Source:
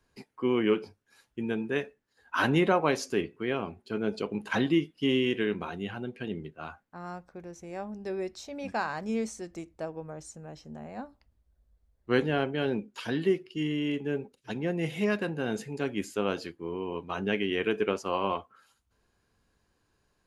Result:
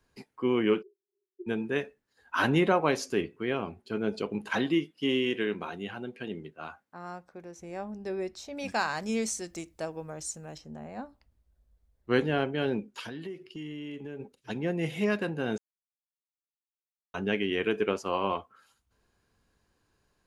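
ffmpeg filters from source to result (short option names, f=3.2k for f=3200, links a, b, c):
-filter_complex "[0:a]asplit=3[a][b][c];[a]afade=t=out:st=0.81:d=0.02[d];[b]asuperpass=centerf=380:order=12:qfactor=5.6,afade=t=in:st=0.81:d=0.02,afade=t=out:st=1.46:d=0.02[e];[c]afade=t=in:st=1.46:d=0.02[f];[d][e][f]amix=inputs=3:normalize=0,asettb=1/sr,asplit=3[g][h][i];[g]atrim=end=4.494[j];[h]atrim=start=4.49:end=7.59,asetpts=PTS-STARTPTS,afade=t=in:d=0.004:c=qsin,afade=t=out:st=3.096:d=0.004:c=qsin,highpass=f=210:p=1[k];[i]atrim=start=7.586[l];[j][k]acrossfade=d=0.004:c1=hsin:c2=qsin[m];[m][l]acrossfade=d=0.004:c1=qsin:c2=hsin,asettb=1/sr,asplit=3[n][o][p];[n]atrim=end=8.574[q];[o]atrim=start=8.57:end=10.58,asetpts=PTS-STARTPTS,afade=t=in:d=0.004:c=qsin,afade=t=out:st=2.006:d=0.004:c=qsin,highshelf=f=2.5k:g=11.5[r];[p]atrim=start=10.576[s];[q][r]acrossfade=d=0.004:c1=hsin:c2=qsin[t];[t][s]acrossfade=d=0.004:c1=qsin:c2=hsin,asplit=3[u][v][w];[u]afade=t=out:st=13.01:d=0.02[x];[v]acompressor=threshold=-37dB:ratio=5:attack=3.2:release=140:knee=1:detection=peak,afade=t=in:st=13.01:d=0.02,afade=t=out:st=14.19:d=0.02[y];[w]afade=t=in:st=14.19:d=0.02[z];[x][y][z]amix=inputs=3:normalize=0,asplit=3[aa][ab][ac];[aa]atrim=end=15.58,asetpts=PTS-STARTPTS,afade=t=out:st=15.576:d=0.004:c=hsin[ad];[ab]atrim=start=15.58:end=17.14,asetpts=PTS-STARTPTS,volume=0[ae];[ac]atrim=start=17.14,asetpts=PTS-STARTPTS,afade=t=in:d=0.004:c=hsin[af];[ad][ae][af]concat=n=3:v=0:a=1"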